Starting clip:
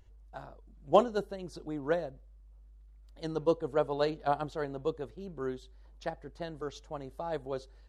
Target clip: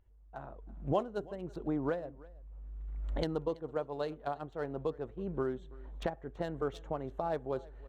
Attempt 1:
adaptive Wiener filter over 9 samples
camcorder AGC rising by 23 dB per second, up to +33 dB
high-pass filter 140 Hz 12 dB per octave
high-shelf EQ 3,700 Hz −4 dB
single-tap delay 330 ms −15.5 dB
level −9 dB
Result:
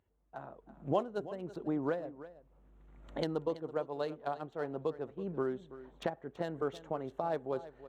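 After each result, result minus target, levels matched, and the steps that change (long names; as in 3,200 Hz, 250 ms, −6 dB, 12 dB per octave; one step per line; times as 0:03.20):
echo-to-direct +6.5 dB; 125 Hz band −3.0 dB
change: single-tap delay 330 ms −22 dB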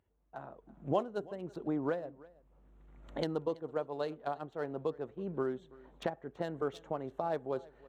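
125 Hz band −3.0 dB
remove: high-pass filter 140 Hz 12 dB per octave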